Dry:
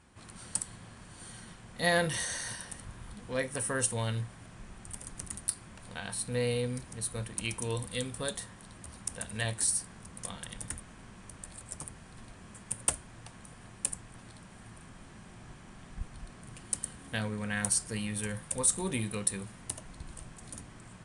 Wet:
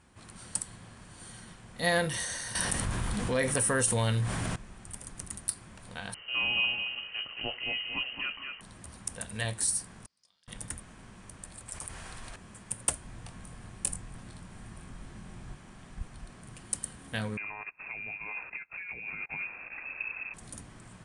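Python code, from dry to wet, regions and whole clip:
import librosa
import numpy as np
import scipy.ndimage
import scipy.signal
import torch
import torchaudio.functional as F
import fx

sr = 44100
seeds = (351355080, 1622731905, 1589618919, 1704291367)

y = fx.chain(x, sr, fx.high_shelf(hz=11000.0, db=2.5),
    fx.env_flatten(amount_pct=70), at=(2.55, 4.56))
y = fx.chain(y, sr, fx.echo_feedback(ms=223, feedback_pct=26, wet_db=-5.5),
    fx.freq_invert(carrier_hz=3000), at=(6.14, 8.61))
y = fx.chain(y, sr, fx.bandpass_q(hz=4900.0, q=10.0),
    fx.tilt_eq(slope=-3.0), at=(10.06, 10.48))
y = fx.chain(y, sr, fx.peak_eq(hz=190.0, db=-10.5, octaves=2.4),
    fx.env_flatten(amount_pct=70), at=(11.68, 12.36))
y = fx.chain(y, sr, fx.low_shelf(hz=130.0, db=9.0),
    fx.doubler(ms=23.0, db=-7.0), at=(13.01, 15.55))
y = fx.chain(y, sr, fx.over_compress(threshold_db=-40.0, ratio=-1.0),
    fx.freq_invert(carrier_hz=2600), at=(17.37, 20.34))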